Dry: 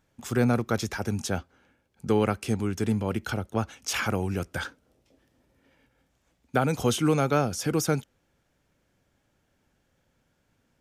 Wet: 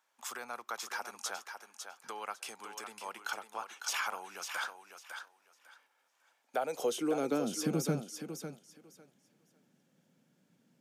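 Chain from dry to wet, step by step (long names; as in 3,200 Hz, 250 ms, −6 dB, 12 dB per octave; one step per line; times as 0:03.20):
high-pass filter 120 Hz 24 dB per octave
parametric band 1,300 Hz −5 dB 2.3 octaves
downward compressor 3 to 1, threshold −32 dBFS, peak gain reduction 10 dB
high-pass filter sweep 1,000 Hz → 180 Hz, 0:06.18–0:07.79
on a send: feedback echo with a high-pass in the loop 552 ms, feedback 20%, high-pass 290 Hz, level −7 dB
on the sum: level −1.5 dB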